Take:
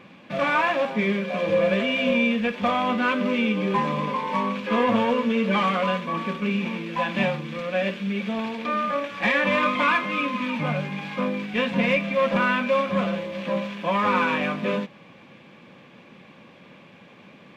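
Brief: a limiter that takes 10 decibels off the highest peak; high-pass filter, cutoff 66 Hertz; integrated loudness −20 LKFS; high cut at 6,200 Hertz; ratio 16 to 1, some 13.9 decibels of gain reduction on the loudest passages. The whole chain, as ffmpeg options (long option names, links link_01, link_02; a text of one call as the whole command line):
ffmpeg -i in.wav -af "highpass=66,lowpass=6200,acompressor=threshold=-31dB:ratio=16,volume=19dB,alimiter=limit=-11.5dB:level=0:latency=1" out.wav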